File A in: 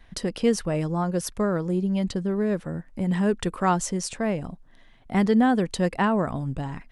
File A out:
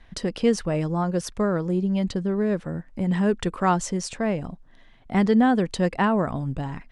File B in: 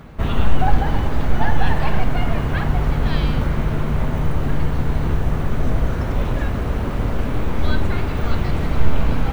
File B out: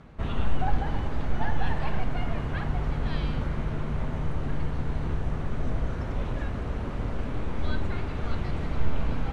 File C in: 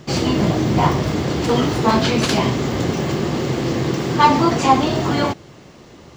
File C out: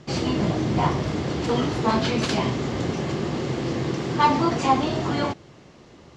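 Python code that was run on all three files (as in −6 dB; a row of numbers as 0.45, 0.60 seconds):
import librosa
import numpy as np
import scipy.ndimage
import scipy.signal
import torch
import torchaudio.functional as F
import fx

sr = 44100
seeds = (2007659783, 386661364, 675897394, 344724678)

y = scipy.signal.sosfilt(scipy.signal.bessel(8, 7400.0, 'lowpass', norm='mag', fs=sr, output='sos'), x)
y = y * 10.0 ** (-24 / 20.0) / np.sqrt(np.mean(np.square(y)))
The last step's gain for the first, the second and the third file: +1.0, −9.5, −5.5 decibels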